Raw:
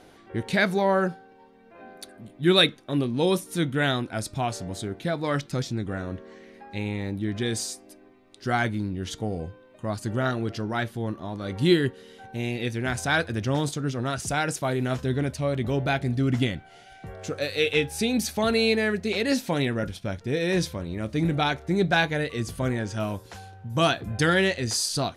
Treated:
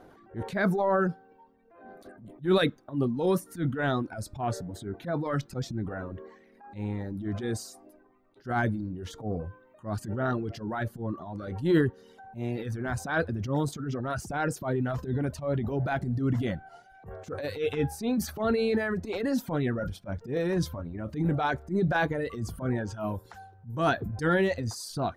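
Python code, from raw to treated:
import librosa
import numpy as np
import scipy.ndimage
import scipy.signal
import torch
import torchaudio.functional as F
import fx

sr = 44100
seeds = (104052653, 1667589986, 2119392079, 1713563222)

y = fx.transient(x, sr, attack_db=-12, sustain_db=6)
y = fx.dereverb_blind(y, sr, rt60_s=1.1)
y = fx.band_shelf(y, sr, hz=4900.0, db=-11.5, octaves=2.8)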